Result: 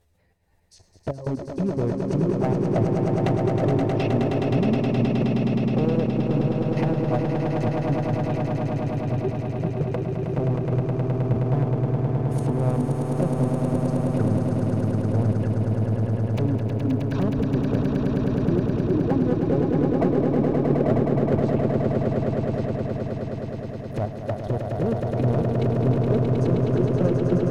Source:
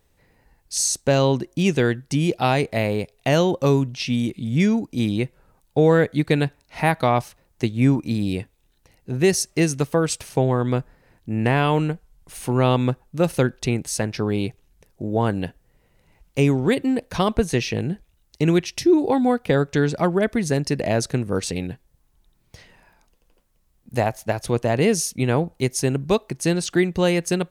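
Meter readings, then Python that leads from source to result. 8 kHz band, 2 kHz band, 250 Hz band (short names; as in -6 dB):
under -20 dB, -11.0 dB, -0.5 dB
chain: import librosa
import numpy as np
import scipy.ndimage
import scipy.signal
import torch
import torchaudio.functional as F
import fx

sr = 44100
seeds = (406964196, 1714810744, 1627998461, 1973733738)

y = fx.dereverb_blind(x, sr, rt60_s=1.6)
y = fx.env_lowpass_down(y, sr, base_hz=550.0, full_db=-20.0)
y = fx.step_gate(y, sr, bpm=95, pattern='xx.x.xx.xxxxxx', floor_db=-12.0, edge_ms=4.5)
y = fx.peak_eq(y, sr, hz=82.0, db=9.0, octaves=0.83)
y = fx.env_flanger(y, sr, rest_ms=11.9, full_db=-15.5)
y = fx.level_steps(y, sr, step_db=14)
y = fx.peak_eq(y, sr, hz=640.0, db=5.5, octaves=0.39)
y = np.clip(10.0 ** (24.0 / 20.0) * y, -1.0, 1.0) / 10.0 ** (24.0 / 20.0)
y = fx.echo_swell(y, sr, ms=105, loudest=8, wet_db=-5.5)
y = y * librosa.db_to_amplitude(4.5)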